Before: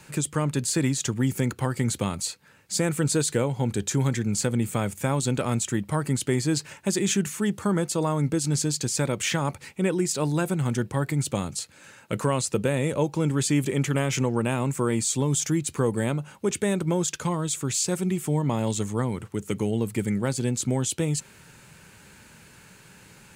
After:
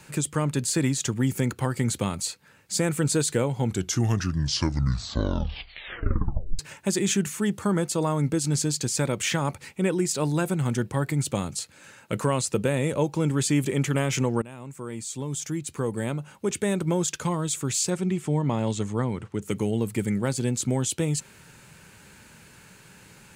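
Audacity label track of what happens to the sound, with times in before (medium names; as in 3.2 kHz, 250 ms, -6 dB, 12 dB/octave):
3.590000	3.590000	tape stop 3.00 s
14.420000	16.890000	fade in, from -18.5 dB
17.900000	19.420000	distance through air 63 m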